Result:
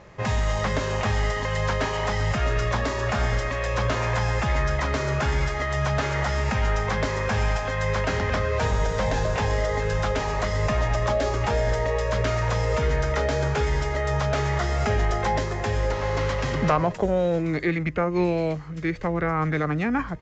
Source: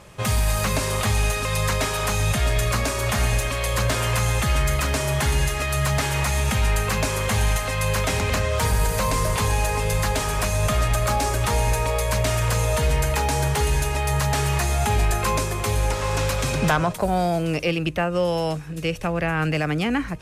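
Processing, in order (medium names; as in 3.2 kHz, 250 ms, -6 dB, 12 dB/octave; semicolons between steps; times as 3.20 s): tone controls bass -3 dB, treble -10 dB; formant shift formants -4 st; resampled via 16 kHz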